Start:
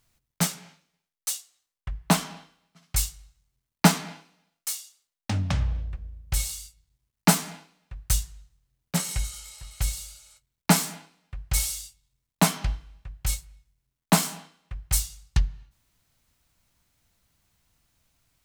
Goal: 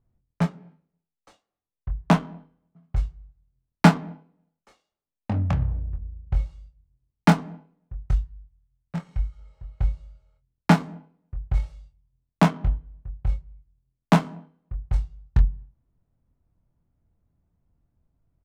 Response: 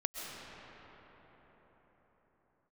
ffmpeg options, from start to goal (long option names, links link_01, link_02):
-filter_complex "[0:a]asettb=1/sr,asplit=3[link_01][link_02][link_03];[link_01]atrim=end=8.114[link_04];[link_02]atrim=start=8.11:end=9.39,asetpts=PTS-STARTPTS,afade=type=in:duration=0.004:curve=qsin,afade=type=out:start_time=1.276:duration=0.004:curve=qsin,equalizer=frequency=330:width=0.52:gain=-11[link_05];[link_03]atrim=start=9.386[link_06];[link_04][link_05]acrossfade=duration=0.004:curve1=hsin:curve2=qsin[link_07];[link_07][link_06]acrossfade=duration=0.004:curve1=qsin:curve2=hsin,adynamicsmooth=sensitivity=1:basefreq=560,asplit=2[link_08][link_09];[link_09]adelay=24,volume=-7dB[link_10];[link_08][link_10]amix=inputs=2:normalize=0,volume=3dB"